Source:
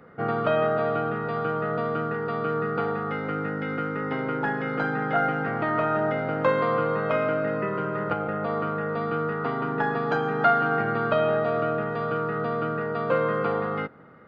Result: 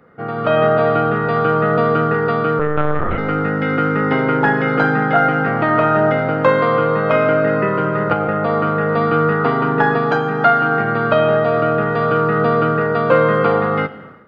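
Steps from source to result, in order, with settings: 2.59–3.18 s: monotone LPC vocoder at 8 kHz 150 Hz; Schroeder reverb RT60 0.97 s, combs from 26 ms, DRR 14 dB; level rider gain up to 13 dB

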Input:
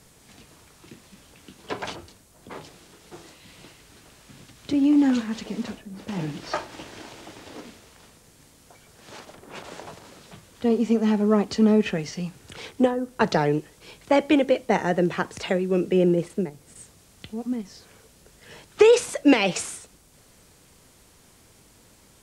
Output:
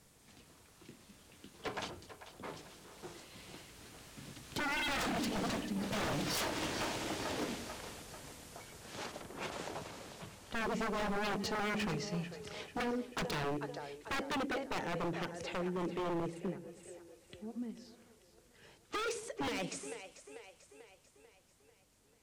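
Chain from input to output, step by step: Doppler pass-by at 6.89 s, 10 m/s, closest 14 m; two-band feedback delay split 400 Hz, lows 105 ms, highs 442 ms, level -13 dB; wavefolder -34.5 dBFS; trim +4 dB

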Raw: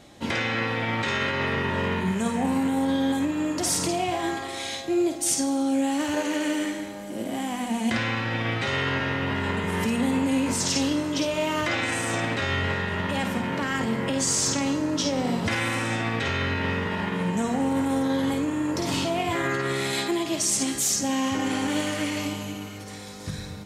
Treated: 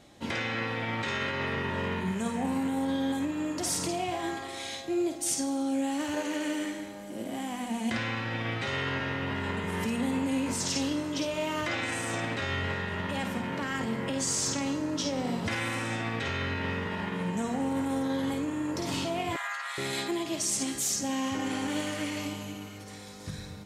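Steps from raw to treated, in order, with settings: 19.36–19.78 s: steep high-pass 730 Hz 48 dB/octave; trim -5.5 dB

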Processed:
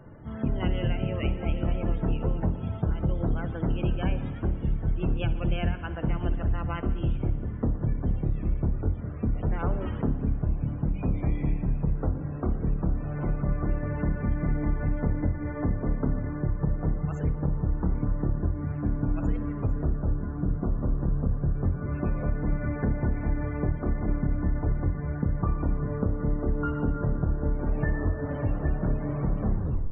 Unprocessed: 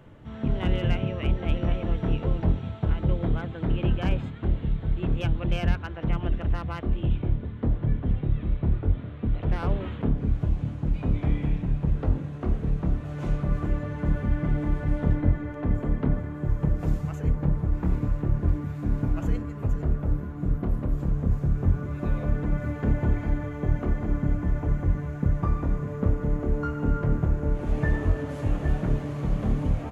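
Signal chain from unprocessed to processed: tape stop on the ending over 0.44 s; compression, threshold -24 dBFS, peak gain reduction 9 dB; loudest bins only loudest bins 64; spring tank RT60 1.9 s, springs 58 ms, chirp 65 ms, DRR 11.5 dB; trim +2 dB

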